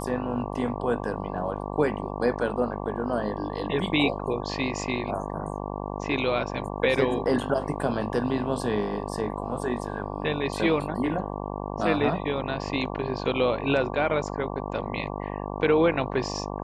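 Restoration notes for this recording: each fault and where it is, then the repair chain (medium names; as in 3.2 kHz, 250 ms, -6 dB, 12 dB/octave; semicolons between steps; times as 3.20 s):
buzz 50 Hz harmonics 23 -33 dBFS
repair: de-hum 50 Hz, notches 23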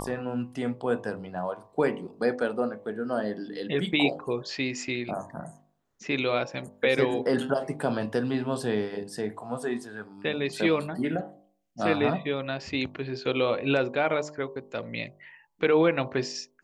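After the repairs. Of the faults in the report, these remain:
nothing left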